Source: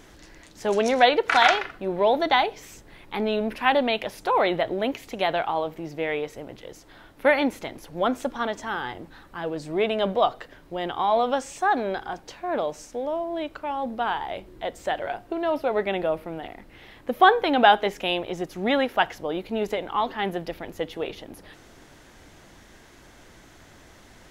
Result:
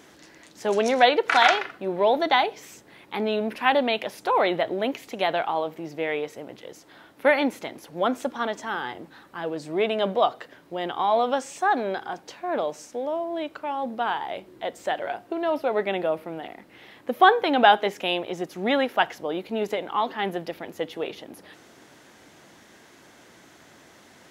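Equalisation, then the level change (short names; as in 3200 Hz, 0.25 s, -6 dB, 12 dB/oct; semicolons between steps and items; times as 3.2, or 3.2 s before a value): HPF 160 Hz 12 dB/oct; 0.0 dB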